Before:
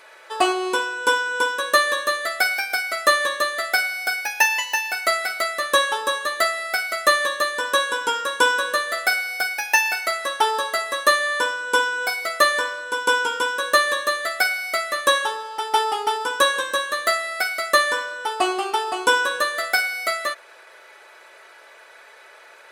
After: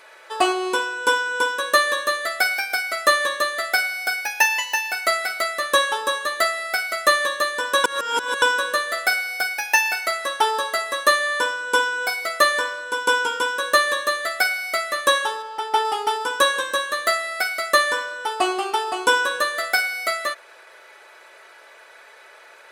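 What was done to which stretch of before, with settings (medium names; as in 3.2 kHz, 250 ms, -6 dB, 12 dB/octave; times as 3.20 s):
7.84–8.42 s: reverse
15.42–15.85 s: treble shelf 4.2 kHz -7 dB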